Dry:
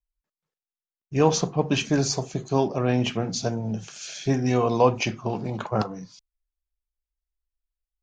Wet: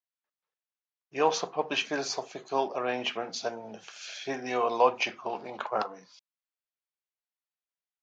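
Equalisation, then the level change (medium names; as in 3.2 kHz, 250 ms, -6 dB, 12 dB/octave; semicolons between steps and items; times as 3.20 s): band-pass 600–4000 Hz; 0.0 dB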